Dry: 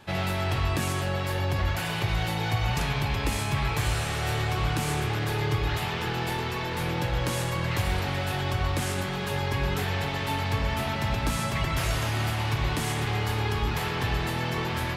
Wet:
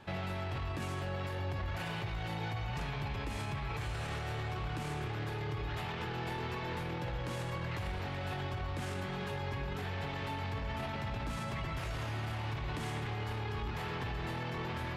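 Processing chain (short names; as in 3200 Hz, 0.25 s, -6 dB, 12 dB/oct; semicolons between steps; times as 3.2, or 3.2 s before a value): LPF 3000 Hz 6 dB/oct; limiter -27.5 dBFS, peak gain reduction 11 dB; gain -2.5 dB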